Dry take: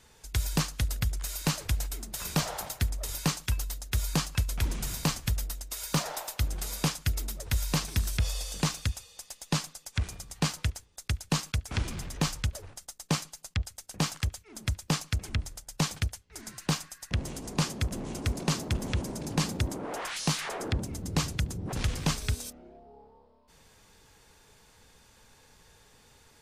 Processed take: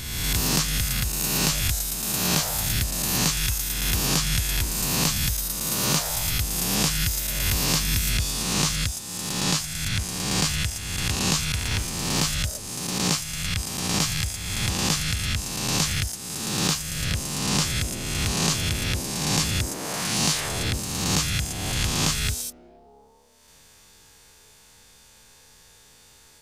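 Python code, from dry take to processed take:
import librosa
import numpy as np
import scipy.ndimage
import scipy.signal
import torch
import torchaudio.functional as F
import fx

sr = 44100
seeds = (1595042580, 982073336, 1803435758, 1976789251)

y = fx.spec_swells(x, sr, rise_s=1.51)
y = fx.high_shelf(y, sr, hz=2700.0, db=9.0)
y = F.gain(torch.from_numpy(y), -1.5).numpy()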